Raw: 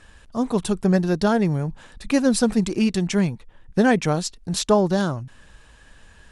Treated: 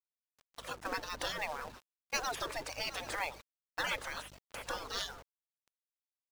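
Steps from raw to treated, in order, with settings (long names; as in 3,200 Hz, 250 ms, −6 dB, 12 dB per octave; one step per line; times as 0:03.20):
hum removal 59.56 Hz, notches 3
gate on every frequency bin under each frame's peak −25 dB weak
on a send: feedback echo with a long and a short gap by turns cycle 891 ms, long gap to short 3 to 1, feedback 33%, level −14 dB
on the sum: mains hum 50 Hz, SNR 17 dB
gate on every frequency bin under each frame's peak −15 dB strong
noise gate with hold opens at −32 dBFS
parametric band 520 Hz +6.5 dB 0.8 octaves
log-companded quantiser 4 bits
drawn EQ curve 510 Hz 0 dB, 1,000 Hz +2 dB, 6,500 Hz −2 dB, 10,000 Hz −5 dB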